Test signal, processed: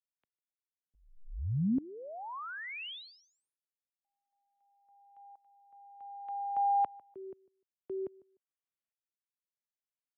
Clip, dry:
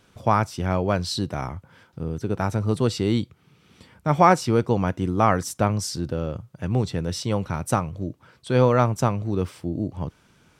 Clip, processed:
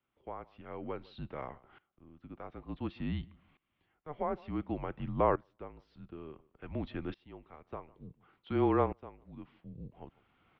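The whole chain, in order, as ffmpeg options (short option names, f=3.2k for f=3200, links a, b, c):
-filter_complex "[0:a]acrossover=split=650|1200[a][b][c];[c]alimiter=level_in=1dB:limit=-24dB:level=0:latency=1:release=68,volume=-1dB[d];[a][b][d]amix=inputs=3:normalize=0,highpass=f=240:t=q:w=0.5412,highpass=f=240:t=q:w=1.307,lowpass=f=3.4k:t=q:w=0.5176,lowpass=f=3.4k:t=q:w=0.7071,lowpass=f=3.4k:t=q:w=1.932,afreqshift=-150,asplit=2[e][f];[f]adelay=150,lowpass=f=1.8k:p=1,volume=-23.5dB,asplit=2[g][h];[h]adelay=150,lowpass=f=1.8k:p=1,volume=0.18[i];[e][g][i]amix=inputs=3:normalize=0,aeval=exprs='val(0)*pow(10,-20*if(lt(mod(-0.56*n/s,1),2*abs(-0.56)/1000),1-mod(-0.56*n/s,1)/(2*abs(-0.56)/1000),(mod(-0.56*n/s,1)-2*abs(-0.56)/1000)/(1-2*abs(-0.56)/1000))/20)':c=same,volume=-5.5dB"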